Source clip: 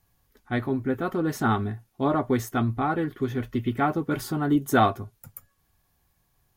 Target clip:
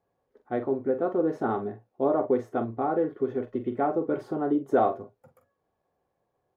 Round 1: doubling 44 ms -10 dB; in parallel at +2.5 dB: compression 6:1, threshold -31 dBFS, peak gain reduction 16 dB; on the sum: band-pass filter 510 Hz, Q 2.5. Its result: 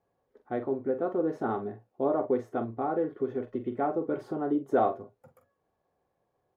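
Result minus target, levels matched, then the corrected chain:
compression: peak gain reduction +8 dB
doubling 44 ms -10 dB; in parallel at +2.5 dB: compression 6:1, threshold -21.5 dBFS, peak gain reduction 8 dB; on the sum: band-pass filter 510 Hz, Q 2.5

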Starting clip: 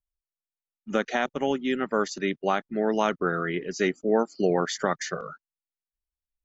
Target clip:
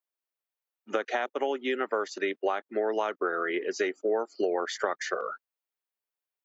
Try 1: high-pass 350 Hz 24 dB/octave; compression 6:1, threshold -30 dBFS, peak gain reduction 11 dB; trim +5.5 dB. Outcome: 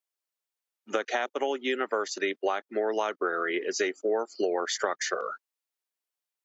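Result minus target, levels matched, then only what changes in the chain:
8 kHz band +7.0 dB
add after compression: peaking EQ 6.9 kHz -8 dB 1.8 oct

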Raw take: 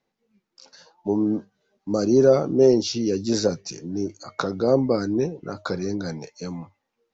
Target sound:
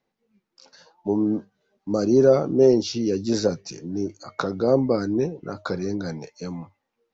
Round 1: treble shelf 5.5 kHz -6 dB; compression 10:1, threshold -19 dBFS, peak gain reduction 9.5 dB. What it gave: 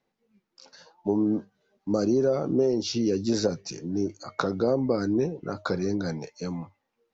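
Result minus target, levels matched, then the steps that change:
compression: peak gain reduction +9.5 dB
remove: compression 10:1, threshold -19 dBFS, peak gain reduction 9.5 dB

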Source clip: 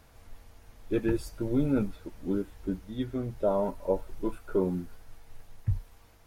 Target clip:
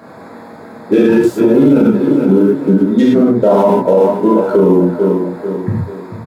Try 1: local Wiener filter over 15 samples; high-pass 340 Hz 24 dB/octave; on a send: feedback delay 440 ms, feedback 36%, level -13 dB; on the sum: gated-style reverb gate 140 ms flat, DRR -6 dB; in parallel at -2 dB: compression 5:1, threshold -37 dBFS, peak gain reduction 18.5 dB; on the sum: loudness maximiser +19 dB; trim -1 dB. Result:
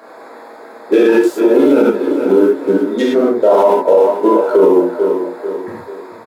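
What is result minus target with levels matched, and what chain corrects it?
125 Hz band -16.5 dB
local Wiener filter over 15 samples; high-pass 160 Hz 24 dB/octave; on a send: feedback delay 440 ms, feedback 36%, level -13 dB; on the sum: gated-style reverb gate 140 ms flat, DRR -6 dB; in parallel at -2 dB: compression 5:1, threshold -37 dBFS, peak gain reduction 19.5 dB; on the sum: loudness maximiser +19 dB; trim -1 dB

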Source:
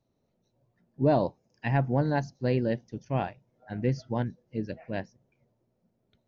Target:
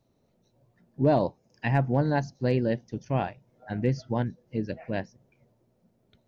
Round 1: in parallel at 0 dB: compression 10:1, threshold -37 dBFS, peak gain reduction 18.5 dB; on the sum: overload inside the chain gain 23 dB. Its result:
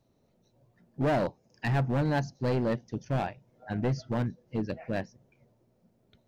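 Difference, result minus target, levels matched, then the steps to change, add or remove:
overload inside the chain: distortion +33 dB
change: overload inside the chain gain 13.5 dB

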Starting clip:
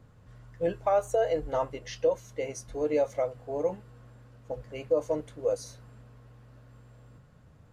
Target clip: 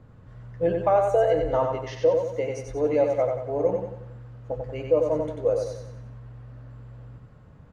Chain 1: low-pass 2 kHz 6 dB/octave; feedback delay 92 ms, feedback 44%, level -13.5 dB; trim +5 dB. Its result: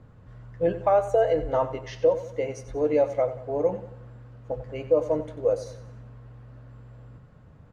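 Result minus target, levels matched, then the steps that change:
echo-to-direct -9 dB
change: feedback delay 92 ms, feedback 44%, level -4.5 dB

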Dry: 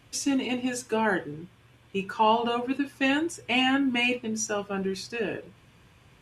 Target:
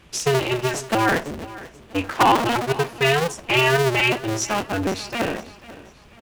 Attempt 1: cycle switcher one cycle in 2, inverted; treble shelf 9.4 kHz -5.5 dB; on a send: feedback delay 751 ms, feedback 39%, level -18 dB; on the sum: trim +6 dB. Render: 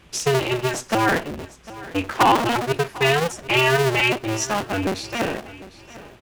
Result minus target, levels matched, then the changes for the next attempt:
echo 261 ms late
change: feedback delay 490 ms, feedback 39%, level -18 dB

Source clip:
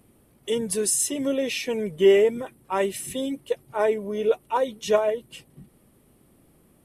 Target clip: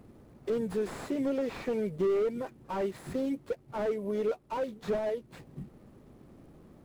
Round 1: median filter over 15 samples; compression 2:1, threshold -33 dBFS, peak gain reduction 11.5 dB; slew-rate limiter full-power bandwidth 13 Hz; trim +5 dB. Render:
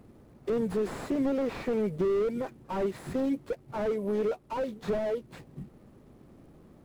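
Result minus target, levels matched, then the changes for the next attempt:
compression: peak gain reduction -3.5 dB
change: compression 2:1, threshold -40 dBFS, peak gain reduction 15 dB

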